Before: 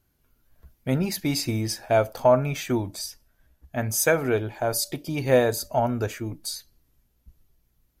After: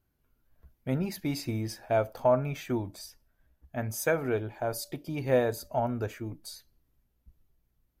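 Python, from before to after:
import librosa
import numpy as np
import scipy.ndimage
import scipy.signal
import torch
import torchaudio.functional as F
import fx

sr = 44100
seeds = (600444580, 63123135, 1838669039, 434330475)

y = fx.peak_eq(x, sr, hz=7500.0, db=-7.0, octaves=2.4)
y = F.gain(torch.from_numpy(y), -5.5).numpy()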